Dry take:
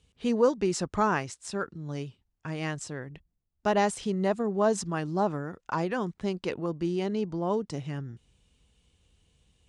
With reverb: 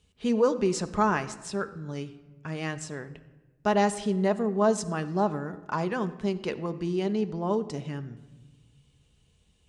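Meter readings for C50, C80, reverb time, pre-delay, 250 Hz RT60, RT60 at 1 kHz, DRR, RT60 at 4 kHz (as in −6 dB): 15.0 dB, 16.5 dB, 1.2 s, 5 ms, 1.8 s, 1.1 s, 9.0 dB, 0.80 s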